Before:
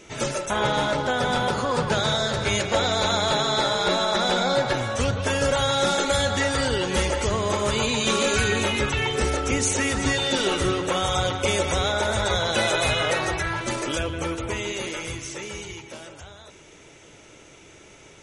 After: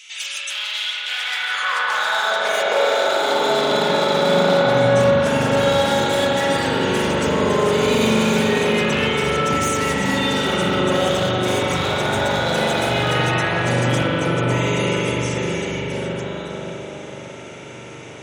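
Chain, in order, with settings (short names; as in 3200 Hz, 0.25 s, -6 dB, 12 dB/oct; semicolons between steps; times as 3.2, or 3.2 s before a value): one-sided fold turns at -19.5 dBFS; in parallel at -2 dB: compressor, threshold -39 dBFS, peak gain reduction 18.5 dB; on the sum: limiter -16.5 dBFS, peak gain reduction 8 dB; high-pass sweep 2900 Hz -> 150 Hz, 0.91–4.09; on a send: dark delay 0.585 s, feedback 52%, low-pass 880 Hz, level -4 dB; on the sum: spring tank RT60 3.3 s, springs 41 ms, chirp 60 ms, DRR -5 dB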